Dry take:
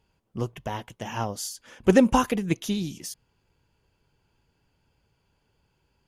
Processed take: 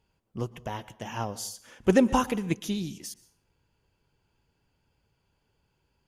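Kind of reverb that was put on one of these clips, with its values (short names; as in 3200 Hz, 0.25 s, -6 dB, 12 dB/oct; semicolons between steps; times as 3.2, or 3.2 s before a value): plate-style reverb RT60 0.55 s, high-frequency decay 0.75×, pre-delay 0.105 s, DRR 19 dB; gain -3 dB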